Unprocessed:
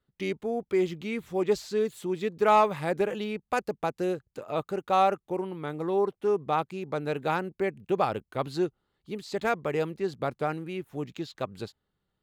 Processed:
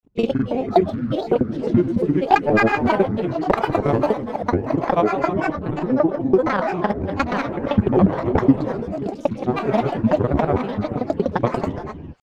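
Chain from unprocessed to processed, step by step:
reversed piece by piece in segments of 60 ms
spectral tilt −3 dB per octave
transient designer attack +9 dB, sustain −4 dB
echo through a band-pass that steps 127 ms, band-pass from 850 Hz, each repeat 0.7 octaves, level −12 dB
reverb whose tail is shaped and stops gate 470 ms flat, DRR 5 dB
granular cloud, pitch spread up and down by 12 semitones
level +2 dB

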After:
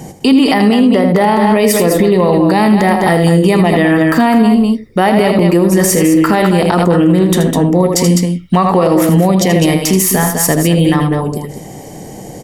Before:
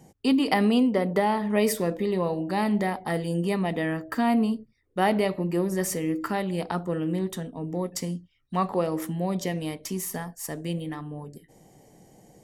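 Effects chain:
on a send: loudspeakers that aren't time-aligned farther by 27 metres −9 dB, 70 metres −9 dB
on the sum: downward compressor 3 to 1, threshold −27 dBFS, peak gain reduction 8 dB
boost into a limiter +24.5 dB
level −1 dB

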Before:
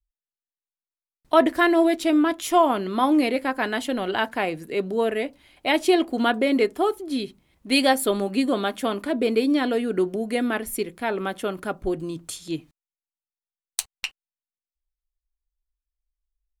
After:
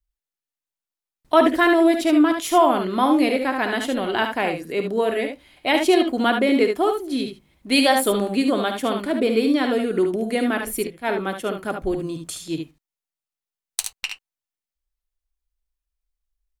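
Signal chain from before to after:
ambience of single reflections 54 ms −12 dB, 73 ms −6.5 dB
0:10.87–0:11.65: multiband upward and downward expander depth 100%
level +1.5 dB

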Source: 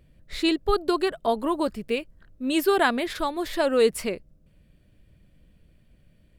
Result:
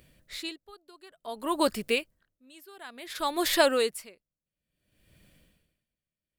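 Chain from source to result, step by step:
spectral tilt +2.5 dB per octave
tremolo with a sine in dB 0.57 Hz, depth 33 dB
level +4.5 dB

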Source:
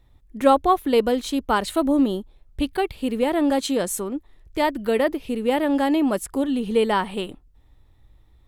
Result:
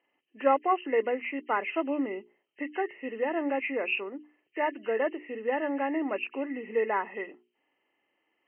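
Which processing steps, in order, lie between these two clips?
hearing-aid frequency compression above 1,700 Hz 4 to 1
high-pass filter 300 Hz 24 dB per octave
mains-hum notches 60/120/180/240/300/360/420 Hz
level −7 dB

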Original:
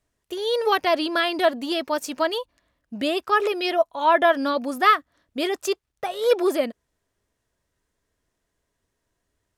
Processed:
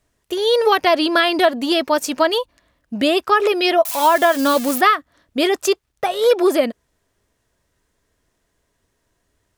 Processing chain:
0:03.85–0:04.81: spike at every zero crossing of −21.5 dBFS
downward compressor, threshold −18 dBFS, peak gain reduction 7.5 dB
level +8 dB

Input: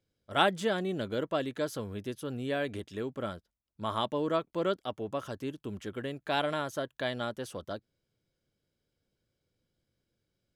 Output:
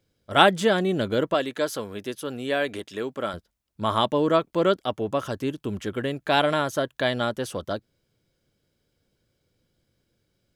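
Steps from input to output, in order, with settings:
0:01.34–0:03.34: high-pass filter 410 Hz 6 dB per octave
level +9 dB

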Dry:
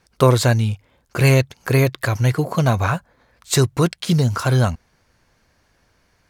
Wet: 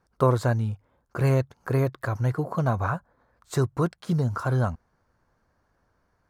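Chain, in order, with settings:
high shelf with overshoot 1,800 Hz −9.5 dB, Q 1.5
level −7.5 dB

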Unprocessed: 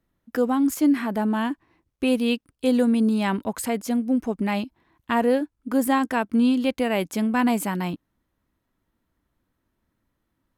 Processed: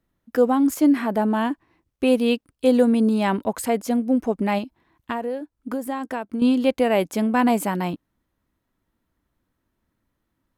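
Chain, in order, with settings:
dynamic equaliser 580 Hz, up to +6 dB, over −36 dBFS, Q 0.88
0:04.58–0:06.42: downward compressor 6 to 1, threshold −25 dBFS, peak gain reduction 13 dB

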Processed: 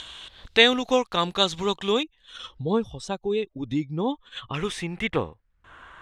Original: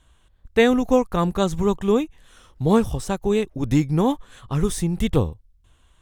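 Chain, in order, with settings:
0:02.03–0:04.54: expanding power law on the bin magnitudes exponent 1.5
RIAA equalisation recording
upward compression, threshold −27 dBFS
low-pass filter sweep 3,700 Hz → 1,500 Hz, 0:04.09–0:05.67
level −1 dB

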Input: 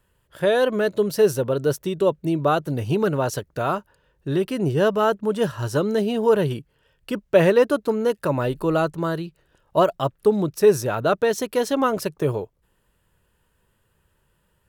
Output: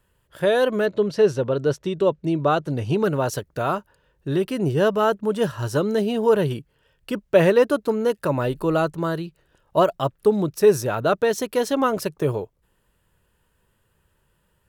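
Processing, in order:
0:00.85–0:03.02: low-pass filter 4,100 Hz → 8,800 Hz 12 dB per octave

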